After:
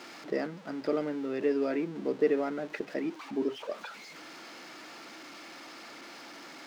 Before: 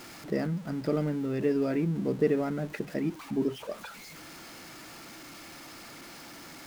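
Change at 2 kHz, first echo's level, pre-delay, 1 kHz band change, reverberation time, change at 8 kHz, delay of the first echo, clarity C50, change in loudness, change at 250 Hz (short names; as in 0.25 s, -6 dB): +1.0 dB, none, none, +1.0 dB, none, -5.0 dB, none, none, -2.0 dB, -3.5 dB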